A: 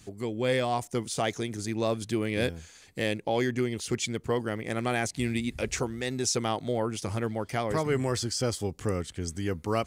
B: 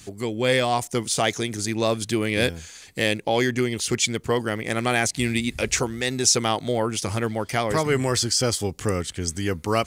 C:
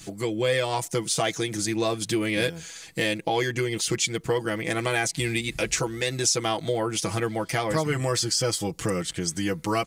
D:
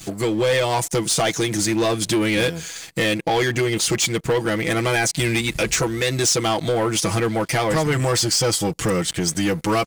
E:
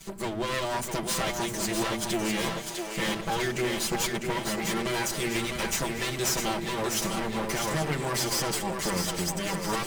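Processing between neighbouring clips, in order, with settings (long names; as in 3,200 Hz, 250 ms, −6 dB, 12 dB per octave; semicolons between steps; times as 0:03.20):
tilt shelving filter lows −3 dB, about 1,400 Hz; level +7.5 dB
comb filter 6.1 ms, depth 78%; downward compressor 2 to 1, threshold −25 dBFS, peak gain reduction 7.5 dB
leveller curve on the samples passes 3; level −3 dB
lower of the sound and its delayed copy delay 5.1 ms; echo with a time of its own for lows and highs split 310 Hz, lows 86 ms, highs 652 ms, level −5 dB; level −7.5 dB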